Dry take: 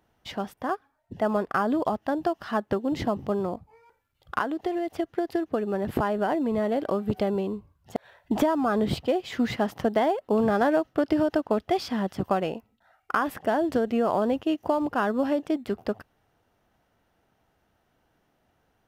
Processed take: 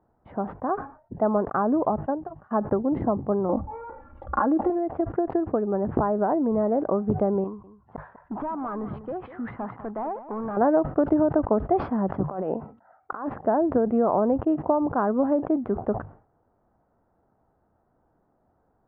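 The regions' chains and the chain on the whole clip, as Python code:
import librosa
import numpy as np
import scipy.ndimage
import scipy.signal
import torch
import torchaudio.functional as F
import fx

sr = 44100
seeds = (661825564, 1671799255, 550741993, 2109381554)

y = fx.chain(x, sr, fx.notch_comb(f0_hz=340.0),
    fx.upward_expand(threshold_db=-37.0, expansion=2.5), at=(2.06, 2.51))
y = fx.chain(y, sr, fx.comb(ms=3.6, depth=0.77),
    fx.env_flatten(amount_pct=50), at=(3.49, 4.7))
y = fx.chain(y, sr, fx.low_shelf_res(hz=790.0, db=-7.5, q=1.5),
    fx.clip_hard(threshold_db=-29.5),
    fx.echo_single(ms=198, db=-13.5), at=(7.44, 10.57))
y = fx.chain(y, sr, fx.highpass(hz=210.0, slope=6),
    fx.over_compress(threshold_db=-32.0, ratio=-1.0), at=(12.23, 13.3))
y = scipy.signal.sosfilt(scipy.signal.butter(4, 1200.0, 'lowpass', fs=sr, output='sos'), y)
y = fx.hum_notches(y, sr, base_hz=50, count=3)
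y = fx.sustainer(y, sr, db_per_s=130.0)
y = y * 10.0 ** (2.5 / 20.0)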